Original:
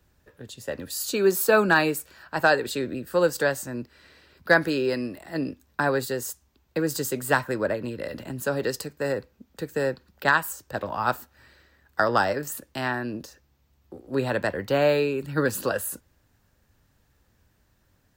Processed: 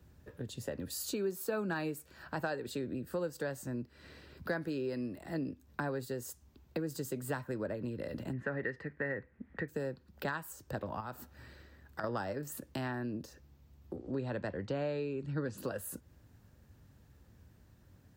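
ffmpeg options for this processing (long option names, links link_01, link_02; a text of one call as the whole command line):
ffmpeg -i in.wav -filter_complex "[0:a]asettb=1/sr,asplit=3[link_01][link_02][link_03];[link_01]atrim=end=8.334[link_04];[link_02]atrim=start=8.33:end=9.68,asetpts=PTS-STARTPTS,afade=type=in:duration=0.004:curve=qsin,afade=type=out:start_time=1.346:duration=0.004:curve=qsin,lowpass=frequency=1900:width_type=q:width=7.4[link_05];[link_03]atrim=start=9.676[link_06];[link_04][link_05]acrossfade=duration=0.004:curve1=hsin:curve2=qsin[link_07];[link_07][link_06]acrossfade=duration=0.004:curve1=qsin:curve2=hsin,asettb=1/sr,asplit=3[link_08][link_09][link_10];[link_08]atrim=end=11.004[link_11];[link_09]atrim=start=11:end=12.04,asetpts=PTS-STARTPTS,afade=type=in:duration=0.004:curve=qsin,afade=type=out:start_time=1.036:duration=0.004:curve=qsin,acompressor=threshold=-34dB:ratio=2.5:attack=3.2:release=140:knee=1:detection=peak[link_12];[link_10]atrim=start=12.036[link_13];[link_11][link_12]acrossfade=duration=0.004:curve1=hsin:curve2=qsin[link_14];[link_14][link_13]acrossfade=duration=0.004:curve1=qsin:curve2=hsin,asettb=1/sr,asplit=3[link_15][link_16][link_17];[link_15]atrim=end=13.964[link_18];[link_16]atrim=start=13.96:end=15.58,asetpts=PTS-STARTPTS,afade=type=in:duration=0.004:curve=qsin,afade=type=out:start_time=1.616:duration=0.004:curve=qsin,lowpass=frequency=7200:width=0.5412,lowpass=frequency=7200:width=1.3066[link_19];[link_17]atrim=start=15.576[link_20];[link_18][link_19]acrossfade=duration=0.004:curve1=hsin:curve2=qsin[link_21];[link_21][link_20]acrossfade=duration=0.004:curve1=qsin:curve2=hsin,highpass=60,lowshelf=frequency=430:gain=11,acompressor=threshold=-36dB:ratio=3,volume=-3dB" out.wav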